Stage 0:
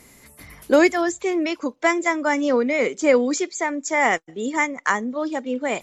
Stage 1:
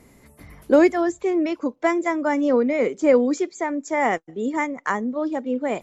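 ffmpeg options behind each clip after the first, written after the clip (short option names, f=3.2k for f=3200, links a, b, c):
-af "tiltshelf=f=1.4k:g=6,volume=-4dB"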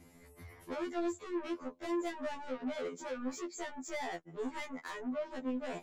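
-af "acompressor=threshold=-20dB:ratio=6,asoftclip=type=tanh:threshold=-29.5dB,afftfilt=real='re*2*eq(mod(b,4),0)':imag='im*2*eq(mod(b,4),0)':win_size=2048:overlap=0.75,volume=-4.5dB"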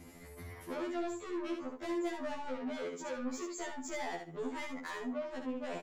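-af "acompressor=threshold=-54dB:ratio=1.5,aecho=1:1:69|138|207:0.531|0.0956|0.0172,volume=5.5dB"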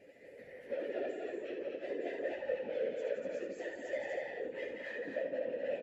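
-filter_complex "[0:a]afftfilt=real='hypot(re,im)*cos(2*PI*random(0))':imag='hypot(re,im)*sin(2*PI*random(1))':win_size=512:overlap=0.75,asplit=3[a][b][c];[a]bandpass=f=530:t=q:w=8,volume=0dB[d];[b]bandpass=f=1.84k:t=q:w=8,volume=-6dB[e];[c]bandpass=f=2.48k:t=q:w=8,volume=-9dB[f];[d][e][f]amix=inputs=3:normalize=0,aecho=1:1:172|242:0.501|0.631,volume=14.5dB"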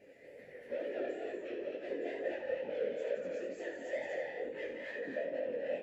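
-af "flanger=delay=19:depth=6.7:speed=2.2,volume=3dB"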